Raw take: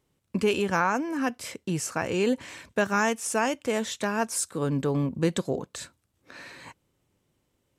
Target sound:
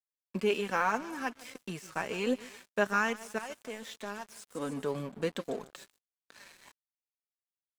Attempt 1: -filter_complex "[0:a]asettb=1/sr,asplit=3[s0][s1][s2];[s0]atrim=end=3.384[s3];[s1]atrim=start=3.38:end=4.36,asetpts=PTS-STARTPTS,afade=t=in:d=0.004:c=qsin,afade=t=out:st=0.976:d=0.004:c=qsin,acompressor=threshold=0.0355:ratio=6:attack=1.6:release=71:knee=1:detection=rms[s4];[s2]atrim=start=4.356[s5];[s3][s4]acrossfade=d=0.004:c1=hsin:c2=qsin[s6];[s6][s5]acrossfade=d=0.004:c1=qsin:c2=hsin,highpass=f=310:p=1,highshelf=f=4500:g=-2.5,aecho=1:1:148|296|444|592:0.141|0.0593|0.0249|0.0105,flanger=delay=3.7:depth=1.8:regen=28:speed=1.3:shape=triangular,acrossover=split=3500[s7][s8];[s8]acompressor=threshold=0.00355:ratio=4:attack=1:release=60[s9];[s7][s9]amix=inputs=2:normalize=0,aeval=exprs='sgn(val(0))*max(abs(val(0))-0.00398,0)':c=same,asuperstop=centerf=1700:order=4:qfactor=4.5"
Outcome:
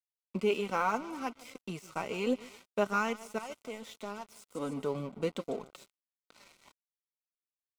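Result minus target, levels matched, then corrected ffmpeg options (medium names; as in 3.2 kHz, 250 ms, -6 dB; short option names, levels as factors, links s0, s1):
2 kHz band -4.0 dB; 8 kHz band -2.5 dB
-filter_complex "[0:a]asettb=1/sr,asplit=3[s0][s1][s2];[s0]atrim=end=3.384[s3];[s1]atrim=start=3.38:end=4.36,asetpts=PTS-STARTPTS,afade=t=in:d=0.004:c=qsin,afade=t=out:st=0.976:d=0.004:c=qsin,acompressor=threshold=0.0355:ratio=6:attack=1.6:release=71:knee=1:detection=rms[s4];[s2]atrim=start=4.356[s5];[s3][s4]acrossfade=d=0.004:c1=hsin:c2=qsin[s6];[s6][s5]acrossfade=d=0.004:c1=qsin:c2=hsin,highpass=f=310:p=1,highshelf=f=4500:g=7.5,aecho=1:1:148|296|444|592:0.141|0.0593|0.0249|0.0105,flanger=delay=3.7:depth=1.8:regen=28:speed=1.3:shape=triangular,acrossover=split=3500[s7][s8];[s8]acompressor=threshold=0.00355:ratio=4:attack=1:release=60[s9];[s7][s9]amix=inputs=2:normalize=0,aeval=exprs='sgn(val(0))*max(abs(val(0))-0.00398,0)':c=same"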